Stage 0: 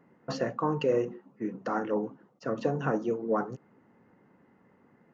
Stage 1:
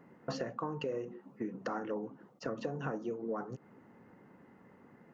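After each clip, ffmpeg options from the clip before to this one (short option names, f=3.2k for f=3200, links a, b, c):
-af "acompressor=threshold=-38dB:ratio=6,volume=3dB"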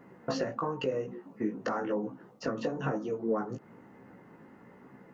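-af "flanger=delay=15:depth=4:speed=1,volume=8.5dB"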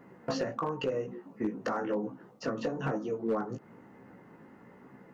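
-af "asoftclip=type=hard:threshold=-23.5dB"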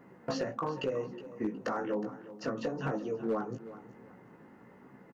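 -af "aecho=1:1:366|732|1098:0.168|0.0436|0.0113,volume=-1.5dB"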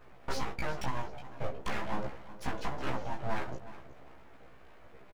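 -filter_complex "[0:a]aeval=exprs='abs(val(0))':c=same,asplit=2[a][b];[b]adelay=15,volume=-3dB[c];[a][c]amix=inputs=2:normalize=0"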